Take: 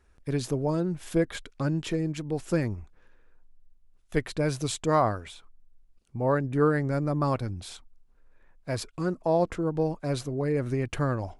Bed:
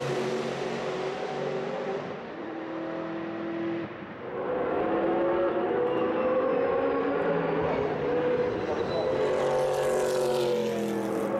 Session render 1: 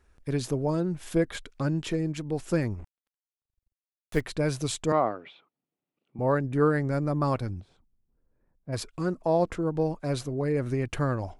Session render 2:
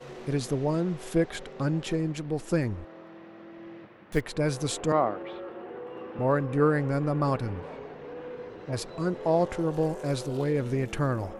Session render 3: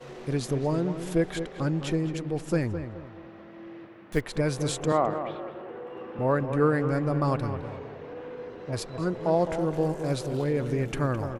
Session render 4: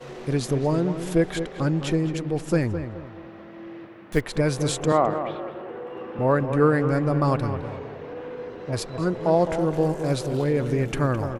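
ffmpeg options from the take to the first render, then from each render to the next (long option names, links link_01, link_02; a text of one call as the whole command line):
ffmpeg -i in.wav -filter_complex "[0:a]asettb=1/sr,asplit=3[link_01][link_02][link_03];[link_01]atrim=end=2.794[link_04];[link_02]atrim=start=2.79:end=4.21,asetpts=PTS-STARTPTS,afade=type=in:duration=0.004:curve=qsin,afade=type=out:start_time=1.416:duration=0.004:curve=qsin,acrusher=bits=6:mix=0:aa=0.5[link_05];[link_03]atrim=start=4.206[link_06];[link_04][link_05]acrossfade=duration=0.004:curve1=hsin:curve2=qsin[link_07];[link_07][link_06]acrossfade=duration=0.004:curve1=qsin:curve2=hsin,asettb=1/sr,asplit=3[link_08][link_09][link_10];[link_08]atrim=end=4.924[link_11];[link_09]atrim=start=4.92:end=6.19,asetpts=PTS-STARTPTS,afade=type=in:duration=0.004:curve=qsin,afade=type=out:start_time=1.266:duration=0.004:curve=qsin,highpass=frequency=170:width=0.5412,highpass=frequency=170:width=1.3066,equalizer=frequency=200:width_type=q:width=4:gain=-6,equalizer=frequency=990:width_type=q:width=4:gain=-4,equalizer=frequency=1600:width_type=q:width=4:gain=-8,lowpass=frequency=3100:width=0.5412,lowpass=frequency=3100:width=1.3066[link_12];[link_10]atrim=start=6.186[link_13];[link_11][link_12]acrossfade=duration=0.004:curve1=hsin:curve2=qsin[link_14];[link_14][link_13]acrossfade=duration=0.004:curve1=qsin:curve2=hsin,asplit=3[link_15][link_16][link_17];[link_15]afade=type=out:start_time=7.6:duration=0.02[link_18];[link_16]bandpass=frequency=140:width_type=q:width=0.62,afade=type=in:start_time=7.6:duration=0.02,afade=type=out:start_time=8.72:duration=0.02[link_19];[link_17]afade=type=in:start_time=8.72:duration=0.02[link_20];[link_18][link_19][link_20]amix=inputs=3:normalize=0" out.wav
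ffmpeg -i in.wav -i bed.wav -filter_complex "[1:a]volume=-13.5dB[link_01];[0:a][link_01]amix=inputs=2:normalize=0" out.wav
ffmpeg -i in.wav -filter_complex "[0:a]asplit=2[link_01][link_02];[link_02]adelay=212,lowpass=frequency=2000:poles=1,volume=-9dB,asplit=2[link_03][link_04];[link_04]adelay=212,lowpass=frequency=2000:poles=1,volume=0.37,asplit=2[link_05][link_06];[link_06]adelay=212,lowpass=frequency=2000:poles=1,volume=0.37,asplit=2[link_07][link_08];[link_08]adelay=212,lowpass=frequency=2000:poles=1,volume=0.37[link_09];[link_01][link_03][link_05][link_07][link_09]amix=inputs=5:normalize=0" out.wav
ffmpeg -i in.wav -af "volume=4dB" out.wav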